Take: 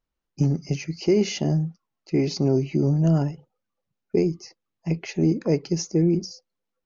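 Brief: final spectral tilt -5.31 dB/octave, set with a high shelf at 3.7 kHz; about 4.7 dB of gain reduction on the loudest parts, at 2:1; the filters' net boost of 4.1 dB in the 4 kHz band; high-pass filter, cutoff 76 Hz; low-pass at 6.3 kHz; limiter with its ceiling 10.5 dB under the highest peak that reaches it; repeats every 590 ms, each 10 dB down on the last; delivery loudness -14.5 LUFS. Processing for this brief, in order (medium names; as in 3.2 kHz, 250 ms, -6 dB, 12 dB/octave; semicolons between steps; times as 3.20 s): high-pass 76 Hz; low-pass 6.3 kHz; treble shelf 3.7 kHz +5 dB; peaking EQ 4 kHz +3 dB; compression 2:1, threshold -24 dBFS; peak limiter -23.5 dBFS; feedback delay 590 ms, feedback 32%, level -10 dB; trim +18.5 dB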